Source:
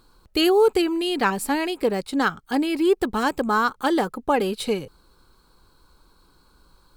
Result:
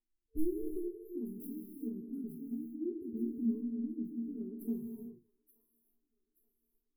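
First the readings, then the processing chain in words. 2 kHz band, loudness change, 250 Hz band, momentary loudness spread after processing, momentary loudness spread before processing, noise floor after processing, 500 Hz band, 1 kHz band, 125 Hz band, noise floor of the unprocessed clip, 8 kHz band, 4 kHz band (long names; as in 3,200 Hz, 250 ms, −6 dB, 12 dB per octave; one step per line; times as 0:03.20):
below −40 dB, −17.5 dB, −12.5 dB, 9 LU, 7 LU, −84 dBFS, −22.5 dB, below −40 dB, −14.5 dB, −59 dBFS, below −25 dB, below −40 dB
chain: stylus tracing distortion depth 0.099 ms
noise reduction from a noise print of the clip's start 30 dB
brick-wall band-stop 450–10,000 Hz
parametric band 5,300 Hz −6.5 dB 2.9 octaves
downward compressor 10 to 1, threshold −31 dBFS, peak gain reduction 17 dB
resonators tuned to a chord A#3 sus4, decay 0.26 s
rotating-speaker cabinet horn 0.8 Hz
delay with a high-pass on its return 878 ms, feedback 44%, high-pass 1,600 Hz, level −10 dB
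reverb whose tail is shaped and stops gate 420 ms flat, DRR 3 dB
phaser whose notches keep moving one way rising 0.53 Hz
level +14.5 dB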